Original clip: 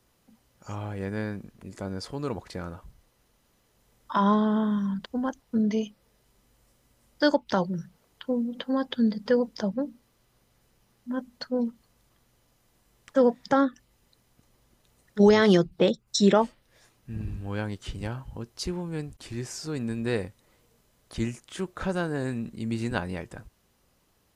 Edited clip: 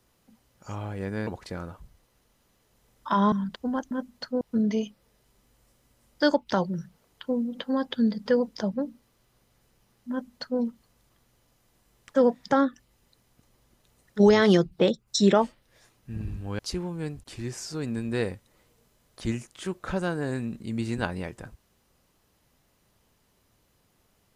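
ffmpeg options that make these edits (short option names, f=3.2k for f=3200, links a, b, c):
-filter_complex "[0:a]asplit=6[a][b][c][d][e][f];[a]atrim=end=1.272[g];[b]atrim=start=2.308:end=4.362[h];[c]atrim=start=4.818:end=5.412[i];[d]atrim=start=11.098:end=11.602[j];[e]atrim=start=5.408:end=17.592[k];[f]atrim=start=18.518[l];[g][h]acrossfade=d=0.004:c1=hsin:c2=hsin[m];[m][i]acrossfade=d=0.004:c1=hsin:c2=hsin[n];[n][j]acrossfade=d=0.004:c1=hsin:c2=hsin[o];[o][k]acrossfade=d=0.004:c1=hsin:c2=hsin[p];[p][l]acrossfade=d=0.004:c1=hsin:c2=hsin"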